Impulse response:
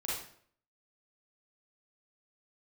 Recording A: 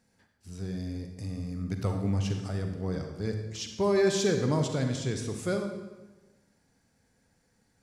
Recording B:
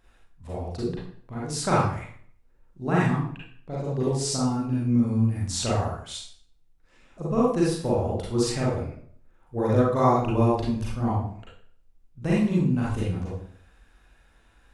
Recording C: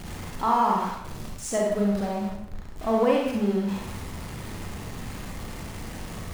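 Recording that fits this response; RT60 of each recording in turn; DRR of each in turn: B; 1.2, 0.60, 0.75 s; 5.0, -7.0, -2.0 dB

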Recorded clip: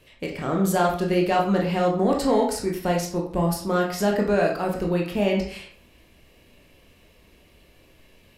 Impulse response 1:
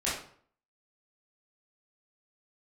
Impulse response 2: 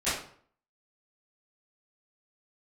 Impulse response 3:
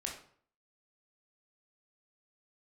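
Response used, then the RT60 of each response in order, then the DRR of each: 3; 0.55, 0.55, 0.55 s; -9.5, -17.5, -1.0 dB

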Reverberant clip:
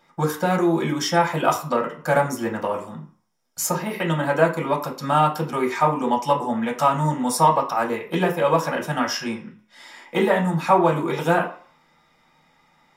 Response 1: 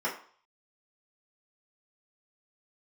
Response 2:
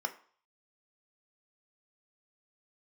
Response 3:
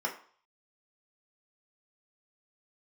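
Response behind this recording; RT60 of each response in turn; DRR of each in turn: 3; 0.50, 0.50, 0.50 s; -6.5, 6.0, -1.0 dB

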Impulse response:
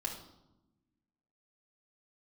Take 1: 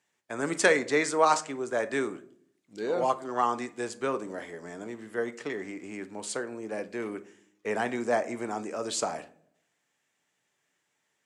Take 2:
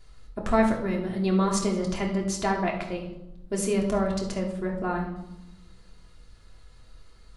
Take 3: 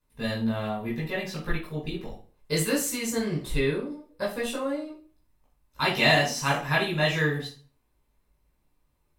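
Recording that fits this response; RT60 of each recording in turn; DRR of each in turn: 2; 0.65, 0.95, 0.40 s; 10.5, -1.5, -5.5 dB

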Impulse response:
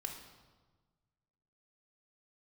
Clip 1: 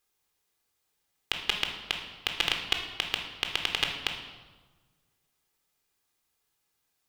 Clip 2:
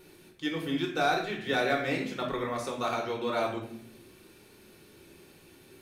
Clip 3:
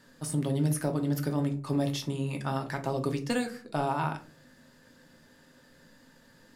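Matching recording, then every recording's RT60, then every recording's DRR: 1; 1.4, 0.65, 0.45 s; 3.0, -0.5, 4.5 dB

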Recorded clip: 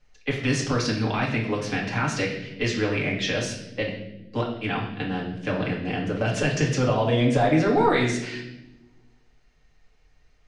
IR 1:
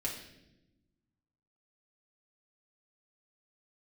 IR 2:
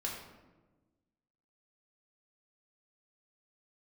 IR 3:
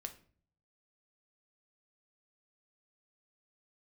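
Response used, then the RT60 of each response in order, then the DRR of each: 1; 0.90, 1.2, 0.45 s; -4.0, -3.0, 6.0 dB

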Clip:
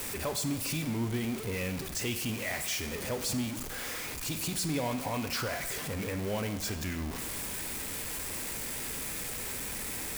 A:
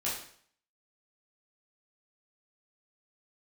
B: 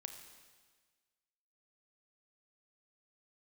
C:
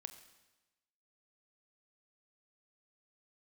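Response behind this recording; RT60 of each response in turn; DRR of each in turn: C; 0.55, 1.5, 1.1 s; -8.0, 5.5, 8.5 dB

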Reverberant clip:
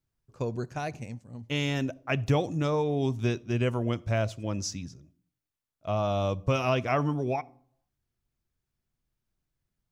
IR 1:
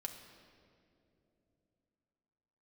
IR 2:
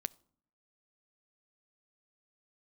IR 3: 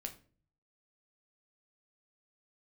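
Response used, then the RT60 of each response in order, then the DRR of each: 2; 2.9 s, not exponential, 0.45 s; 2.0, 17.5, 4.0 dB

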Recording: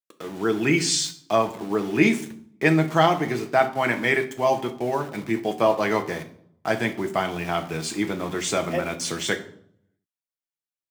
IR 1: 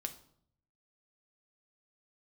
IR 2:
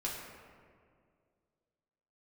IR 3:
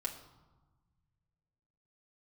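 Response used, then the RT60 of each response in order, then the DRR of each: 1; 0.65, 2.1, 1.2 s; 5.5, -5.0, -1.0 dB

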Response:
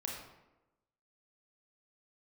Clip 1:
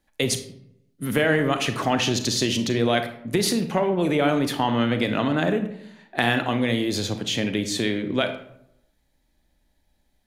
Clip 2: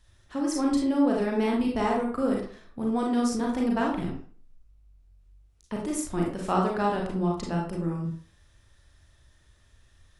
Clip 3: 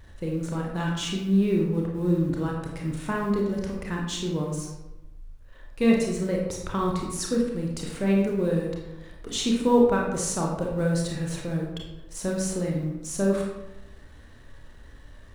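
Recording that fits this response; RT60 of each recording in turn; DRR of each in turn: 3; 0.75, 0.45, 1.0 s; 8.0, -2.0, -1.5 dB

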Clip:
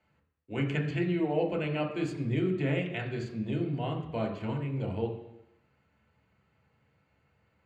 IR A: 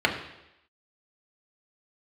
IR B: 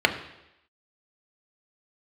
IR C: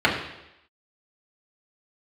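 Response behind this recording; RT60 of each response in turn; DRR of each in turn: A; 0.85, 0.85, 0.85 s; 0.0, 4.5, -5.0 dB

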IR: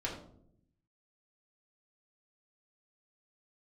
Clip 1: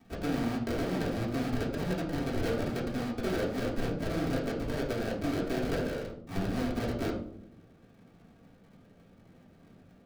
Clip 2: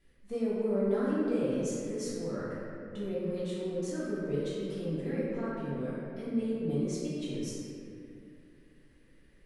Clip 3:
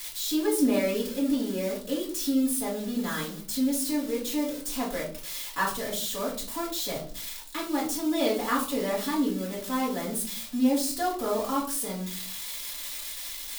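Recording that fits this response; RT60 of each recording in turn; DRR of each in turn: 1; 0.70, 2.5, 0.50 s; -5.5, -11.0, -5.0 dB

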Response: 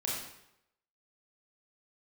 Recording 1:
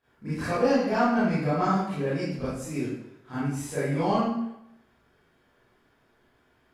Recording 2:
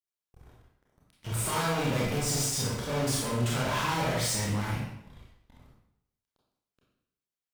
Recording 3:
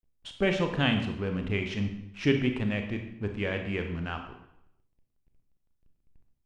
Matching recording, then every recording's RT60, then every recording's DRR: 2; 0.80, 0.80, 0.80 s; -13.5, -5.0, 4.5 dB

